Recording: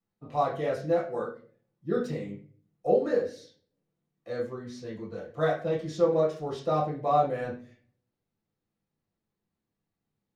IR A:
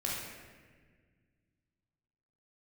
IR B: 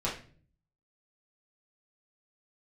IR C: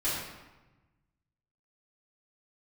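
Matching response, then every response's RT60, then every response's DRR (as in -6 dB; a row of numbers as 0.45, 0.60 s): B; 1.6, 0.45, 1.1 s; -5.0, -7.5, -12.0 dB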